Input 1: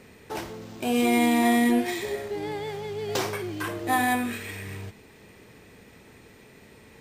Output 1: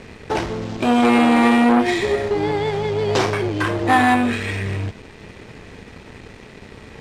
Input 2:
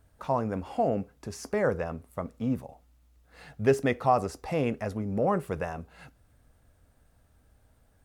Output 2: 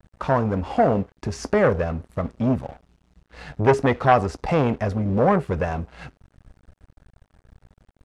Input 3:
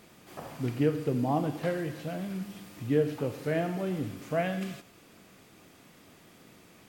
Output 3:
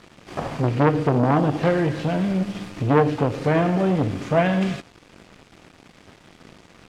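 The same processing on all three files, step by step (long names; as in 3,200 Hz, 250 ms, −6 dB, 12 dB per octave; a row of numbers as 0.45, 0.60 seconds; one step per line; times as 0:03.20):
low-shelf EQ 68 Hz +10 dB
in parallel at −1 dB: downward compressor, threshold −34 dBFS
on the sum: dead-zone distortion −49 dBFS
high-frequency loss of the air 79 metres
saturating transformer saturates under 830 Hz
normalise the peak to −2 dBFS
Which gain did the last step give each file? +9.5, +8.0, +10.5 decibels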